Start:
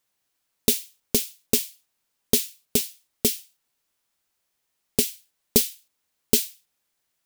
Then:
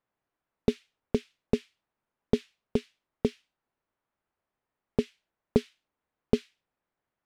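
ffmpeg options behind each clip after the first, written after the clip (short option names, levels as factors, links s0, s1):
-af "lowpass=1400"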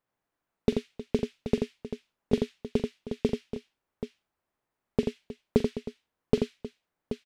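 -af "aecho=1:1:44|85|314|780:0.158|0.562|0.178|0.316"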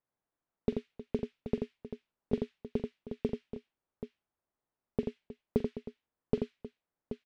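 -af "lowpass=f=1600:p=1,volume=0.501"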